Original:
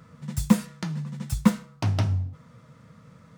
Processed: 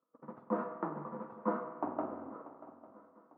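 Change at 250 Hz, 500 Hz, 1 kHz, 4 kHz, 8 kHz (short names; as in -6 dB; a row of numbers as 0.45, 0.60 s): -15.0 dB, 0.0 dB, -1.0 dB, under -35 dB, under -40 dB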